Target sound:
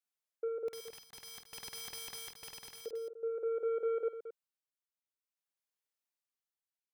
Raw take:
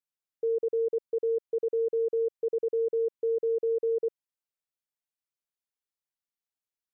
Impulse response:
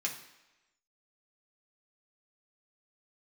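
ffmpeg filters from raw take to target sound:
-filter_complex "[0:a]highpass=370,asettb=1/sr,asplit=3[a][b][c];[a]atrim=end=0.684[d];[b]atrim=start=0.68:end=2.86,asetpts=PTS-STARTPTS,afade=t=in:d=0.004:c=qsin,afade=t=out:st=2.176:d=0.004:c=qsin,aeval=exprs='(mod(70.8*val(0)+1,2)-1)/70.8':c=same[e];[c]atrim=start=2.856[f];[d][e]acrossfade=d=0.004:c1=hsin:c2=qsin[g];[g][f]acrossfade=d=0.004:c1=qsin:c2=hsin,tremolo=f=0.51:d=0.61,asoftclip=type=tanh:threshold=-29dB,aecho=1:1:49.56|221.6:0.355|0.282,volume=-1dB"

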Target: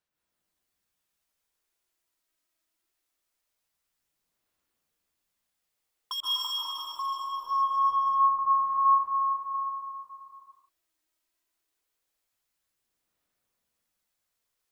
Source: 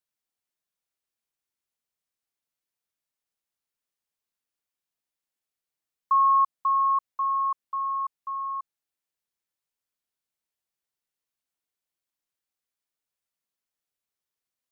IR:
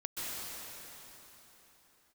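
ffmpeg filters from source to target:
-filter_complex "[0:a]aeval=exprs='0.0631*(abs(mod(val(0)/0.0631+3,4)-2)-1)':c=same,aphaser=in_gain=1:out_gain=1:delay=3.2:decay=0.66:speed=0.23:type=sinusoidal,asettb=1/sr,asplit=3[a][b][c];[a]atrim=end=6.204[d];[b]atrim=start=6.2:end=8.39,asetpts=PTS-STARTPTS,afade=t=in:d=0.004:c=qsin,afade=t=out:st=2.186:d=0.004:c=qsin,lowpass=f=1k:w=0.5412,lowpass=f=1k:w=1.3066[e];[c]atrim=start=8.386[f];[d][e]acrossfade=d=0.004:c1=hsin:c2=qsin[g];[g][f]acrossfade=d=0.004:c1=qsin:c2=hsin[h];[1:a]atrim=start_sample=2205[i];[h][i]afir=irnorm=-1:irlink=0,volume=1.5dB"

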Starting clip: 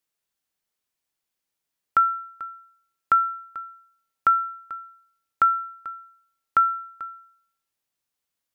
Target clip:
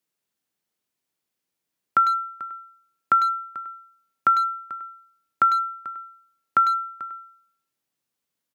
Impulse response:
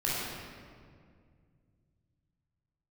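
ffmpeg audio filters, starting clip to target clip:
-filter_complex "[0:a]highpass=130,acrossover=split=400[a][b];[a]acontrast=76[c];[c][b]amix=inputs=2:normalize=0,asplit=2[d][e];[e]adelay=100,highpass=300,lowpass=3.4k,asoftclip=type=hard:threshold=-17.5dB,volume=-8dB[f];[d][f]amix=inputs=2:normalize=0"

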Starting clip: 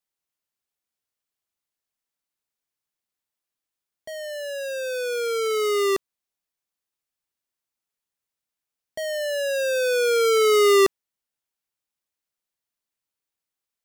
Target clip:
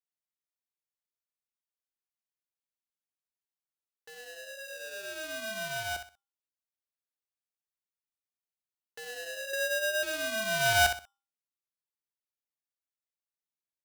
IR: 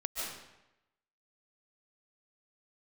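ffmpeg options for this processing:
-filter_complex "[0:a]agate=range=-11dB:threshold=-18dB:ratio=16:detection=peak,bandreject=f=50:t=h:w=6,bandreject=f=100:t=h:w=6,bandreject=f=150:t=h:w=6,bandreject=f=200:t=h:w=6,bandreject=f=250:t=h:w=6,bandreject=f=300:t=h:w=6,asplit=2[a][b];[b]acompressor=threshold=-30dB:ratio=6,volume=-0.5dB[c];[a][c]amix=inputs=2:normalize=0,asettb=1/sr,asplit=3[d][e][f];[d]atrim=end=9.534[g];[e]atrim=start=9.53:end=10.03,asetpts=PTS-STARTPTS,afade=t=in:d=0.004:c=qsin,afade=t=out:st=0.496:d=0.004:c=qsin,lowpass=f=680:t=q:w=4[h];[f]atrim=start=10.026[i];[g][h]acrossfade=d=0.004:c1=hsin:c2=qsin[j];[j][i]acrossfade=d=0.004:c1=qsin:c2=hsin,aecho=1:1:63|126|189:0.376|0.105|0.0295,aeval=exprs='val(0)*sgn(sin(2*PI*1100*n/s))':c=same,volume=-9dB"

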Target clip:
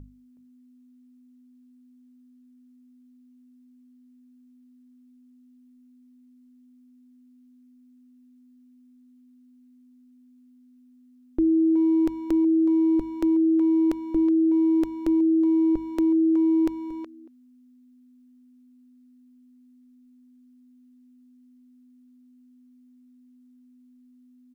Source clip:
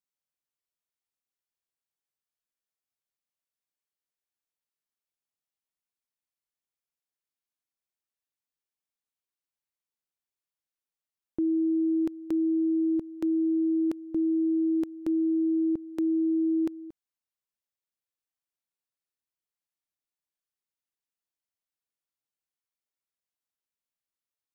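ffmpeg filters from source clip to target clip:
-filter_complex "[0:a]asubboost=boost=7:cutoff=55,aeval=exprs='val(0)+0.00501*(sin(2*PI*50*n/s)+sin(2*PI*2*50*n/s)/2+sin(2*PI*3*50*n/s)/3+sin(2*PI*4*50*n/s)/4+sin(2*PI*5*50*n/s)/5)':c=same,bandreject=f=50:t=h:w=6,bandreject=f=100:t=h:w=6,bandreject=f=150:t=h:w=6,bandreject=f=200:t=h:w=6,asplit=2[a][b];[b]adelay=370,highpass=300,lowpass=3.4k,asoftclip=type=hard:threshold=-30.5dB,volume=-9dB[c];[a][c]amix=inputs=2:normalize=0,volume=7dB"

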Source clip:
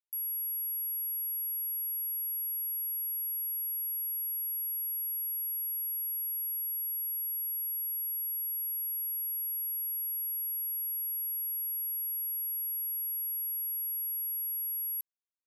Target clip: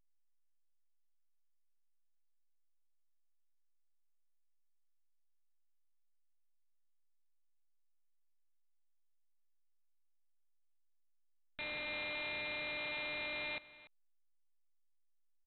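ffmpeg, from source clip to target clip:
-filter_complex "[0:a]asplit=3[a][b][c];[a]afade=t=out:st=11.57:d=0.02[d];[b]acontrast=57,afade=t=in:st=11.57:d=0.02,afade=t=out:st=13.58:d=0.02[e];[c]afade=t=in:st=13.58:d=0.02[f];[d][e][f]amix=inputs=3:normalize=0,asoftclip=type=tanh:threshold=-28.5dB,acrusher=bits=4:mix=0:aa=0.000001,aecho=1:1:290:0.126,volume=6.5dB" -ar 8000 -c:a pcm_alaw

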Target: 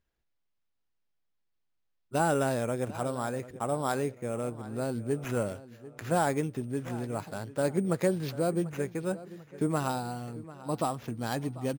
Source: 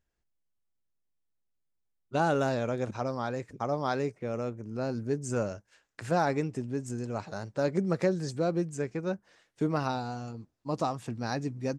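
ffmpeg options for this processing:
-filter_complex "[0:a]acrusher=samples=5:mix=1:aa=0.000001,asplit=2[a][b];[b]adelay=743,lowpass=f=4k:p=1,volume=-17dB,asplit=2[c][d];[d]adelay=743,lowpass=f=4k:p=1,volume=0.43,asplit=2[e][f];[f]adelay=743,lowpass=f=4k:p=1,volume=0.43,asplit=2[g][h];[h]adelay=743,lowpass=f=4k:p=1,volume=0.43[i];[a][c][e][g][i]amix=inputs=5:normalize=0"

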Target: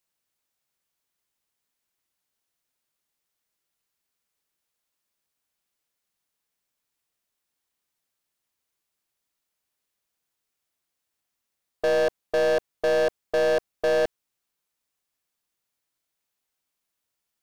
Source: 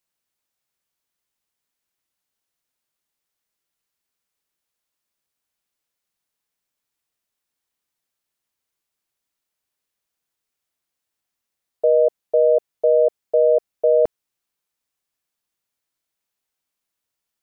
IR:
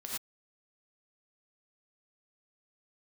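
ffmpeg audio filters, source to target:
-af "aeval=exprs='0.398*(cos(1*acos(clip(val(0)/0.398,-1,1)))-cos(1*PI/2))+0.0501*(cos(6*acos(clip(val(0)/0.398,-1,1)))-cos(6*PI/2))':c=same,volume=18.5dB,asoftclip=hard,volume=-18.5dB"

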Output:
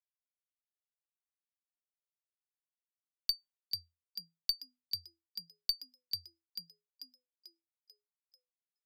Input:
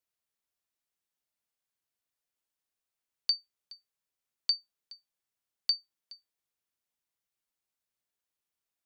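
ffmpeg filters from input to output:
-filter_complex "[0:a]agate=range=-33dB:threshold=-59dB:ratio=3:detection=peak,aeval=exprs='0.158*(cos(1*acos(clip(val(0)/0.158,-1,1)))-cos(1*PI/2))+0.0355*(cos(3*acos(clip(val(0)/0.158,-1,1)))-cos(3*PI/2))+0.00501*(cos(4*acos(clip(val(0)/0.158,-1,1)))-cos(4*PI/2))':c=same,asplit=7[a][b][c][d][e][f][g];[b]adelay=441,afreqshift=83,volume=-4.5dB[h];[c]adelay=882,afreqshift=166,volume=-10.9dB[i];[d]adelay=1323,afreqshift=249,volume=-17.3dB[j];[e]adelay=1764,afreqshift=332,volume=-23.6dB[k];[f]adelay=2205,afreqshift=415,volume=-30dB[l];[g]adelay=2646,afreqshift=498,volume=-36.4dB[m];[a][h][i][j][k][l][m]amix=inputs=7:normalize=0,volume=-1.5dB"

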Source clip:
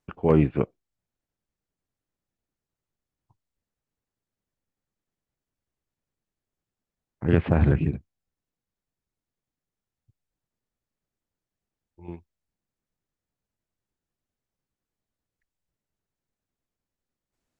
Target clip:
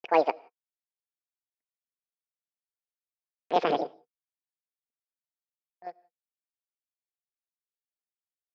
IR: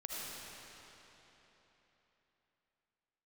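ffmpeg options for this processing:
-filter_complex "[0:a]highpass=210,equalizer=f=230:t=q:w=4:g=9,equalizer=f=340:t=q:w=4:g=9,equalizer=f=1.2k:t=q:w=4:g=10,lowpass=f=2.6k:w=0.5412,lowpass=f=2.6k:w=1.3066,agate=range=-27dB:threshold=-50dB:ratio=16:detection=peak,asetrate=90846,aresample=44100,asplit=2[a][b];[1:a]atrim=start_sample=2205,afade=t=out:st=0.23:d=0.01,atrim=end_sample=10584[c];[b][c]afir=irnorm=-1:irlink=0,volume=-19.5dB[d];[a][d]amix=inputs=2:normalize=0,volume=-6dB"

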